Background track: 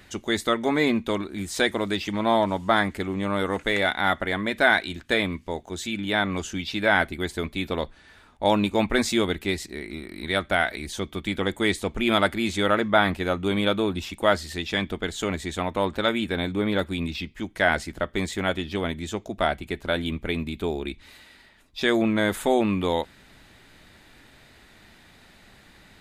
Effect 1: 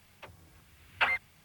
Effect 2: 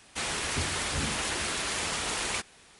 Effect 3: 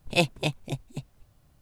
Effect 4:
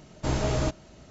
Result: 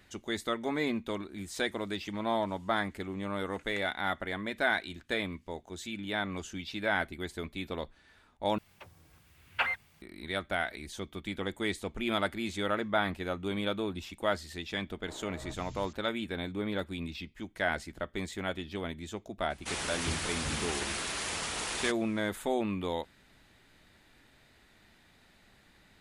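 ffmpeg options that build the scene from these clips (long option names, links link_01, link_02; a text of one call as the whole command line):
ffmpeg -i bed.wav -i cue0.wav -i cue1.wav -i cue2.wav -i cue3.wav -filter_complex "[0:a]volume=-9.5dB[link_01];[4:a]acrossover=split=240|2400[link_02][link_03][link_04];[link_02]adelay=330[link_05];[link_04]adelay=430[link_06];[link_05][link_03][link_06]amix=inputs=3:normalize=0[link_07];[link_01]asplit=2[link_08][link_09];[link_08]atrim=end=8.584[link_10];[1:a]atrim=end=1.44,asetpts=PTS-STARTPTS,volume=-2.5dB[link_11];[link_09]atrim=start=10.016[link_12];[link_07]atrim=end=1.1,asetpts=PTS-STARTPTS,volume=-17dB,afade=type=in:duration=0.004:curve=hsin,afade=type=out:start_time=1.096:duration=0.004:curve=hsin,adelay=14830[link_13];[2:a]atrim=end=2.79,asetpts=PTS-STARTPTS,volume=-4dB,afade=type=in:duration=0.004:curve=hsin,afade=type=out:start_time=2.786:duration=0.004:curve=hsin,adelay=19500[link_14];[link_10][link_11]acrossfade=duration=0.004:curve1=hsin:curve2=hsin[link_15];[link_15][link_12]acrossfade=duration=0.004:curve1=hsin:curve2=hsin[link_16];[link_16][link_13][link_14]amix=inputs=3:normalize=0" out.wav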